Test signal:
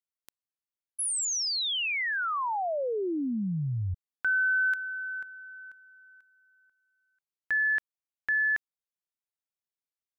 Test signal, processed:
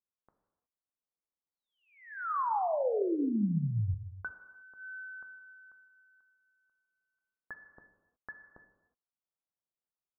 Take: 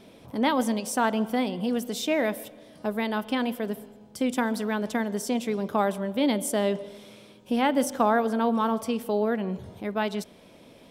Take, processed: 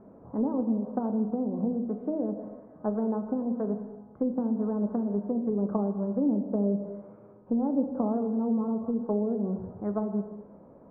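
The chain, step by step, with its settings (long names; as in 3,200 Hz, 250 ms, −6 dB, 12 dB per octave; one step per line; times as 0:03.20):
treble cut that deepens with the level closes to 390 Hz, closed at −22.5 dBFS
Butterworth low-pass 1,300 Hz 36 dB per octave
reverb whose tail is shaped and stops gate 390 ms falling, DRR 6.5 dB
level −1 dB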